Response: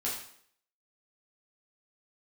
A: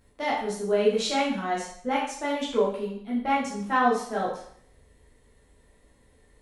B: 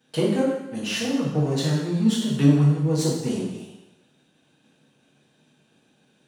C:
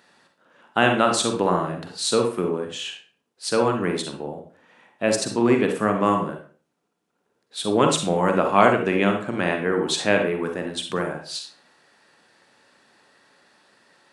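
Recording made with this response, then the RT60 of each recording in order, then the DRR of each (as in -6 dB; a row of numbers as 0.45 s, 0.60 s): A; 0.60 s, 1.0 s, 0.40 s; -6.5 dB, -7.0 dB, 3.5 dB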